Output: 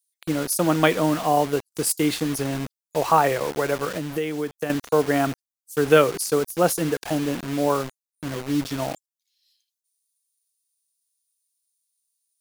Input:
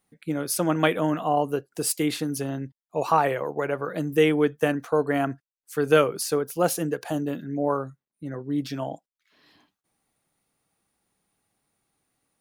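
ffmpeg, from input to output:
-filter_complex "[0:a]acrossover=split=4300[a][b];[a]acrusher=bits=5:mix=0:aa=0.000001[c];[c][b]amix=inputs=2:normalize=0,asettb=1/sr,asplit=3[d][e][f];[d]atrim=end=3.964[g];[e]atrim=start=3.96:end=4.7,asetpts=PTS-STARTPTS,afade=t=in:d=0.004:c=qsin,afade=t=out:st=0.736:d=0.004:c=qsin,acompressor=threshold=-30dB:ratio=3[h];[f]atrim=start=4.696[i];[g][h]acrossfade=d=0.004:c1=hsin:c2=qsin[j];[j][i]acrossfade=d=0.004:c1=qsin:c2=hsin,volume=3dB"

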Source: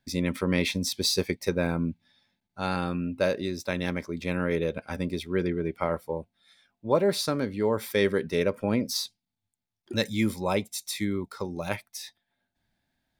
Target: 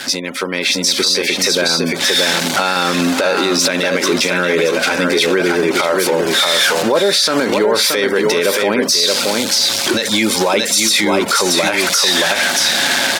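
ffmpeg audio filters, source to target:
-filter_complex "[0:a]aeval=exprs='val(0)+0.5*0.0168*sgn(val(0))':c=same,acompressor=threshold=-30dB:ratio=4,aemphasis=mode=production:type=75fm,asplit=2[a][b];[b]aecho=0:1:626:0.501[c];[a][c]amix=inputs=2:normalize=0,afftfilt=real='re*gte(hypot(re,im),0.00398)':imag='im*gte(hypot(re,im),0.00398)':win_size=1024:overlap=0.75,highpass=340,lowpass=5k,equalizer=f=1.5k:t=o:w=0.2:g=4.5,aeval=exprs='val(0)+0.00158*sin(2*PI*550*n/s)':c=same,dynaudnorm=f=380:g=5:m=11.5dB,alimiter=level_in=18.5dB:limit=-1dB:release=50:level=0:latency=1,volume=-4dB"

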